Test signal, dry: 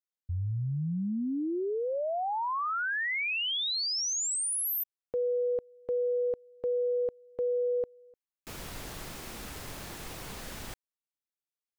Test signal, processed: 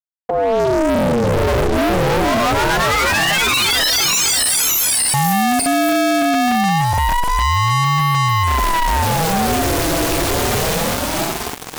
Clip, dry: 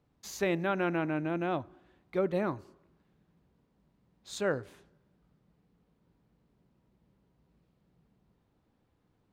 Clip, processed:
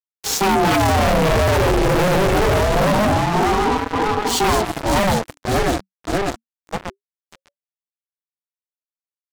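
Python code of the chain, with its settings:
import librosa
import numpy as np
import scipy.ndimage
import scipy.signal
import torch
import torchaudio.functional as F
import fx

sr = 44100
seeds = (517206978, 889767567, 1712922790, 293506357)

y = fx.reverse_delay_fb(x, sr, ms=296, feedback_pct=68, wet_db=-1.5)
y = scipy.signal.sosfilt(scipy.signal.butter(2, 120.0, 'highpass', fs=sr, output='sos'), y)
y = fx.low_shelf(y, sr, hz=370.0, db=10.5)
y = y + 0.84 * np.pad(y, (int(6.1 * sr / 1000.0), 0))[:len(y)]
y = fx.leveller(y, sr, passes=2)
y = fx.fuzz(y, sr, gain_db=34.0, gate_db=-38.0)
y = fx.ring_lfo(y, sr, carrier_hz=410.0, swing_pct=55, hz=0.25)
y = F.gain(torch.from_numpy(y), 1.5).numpy()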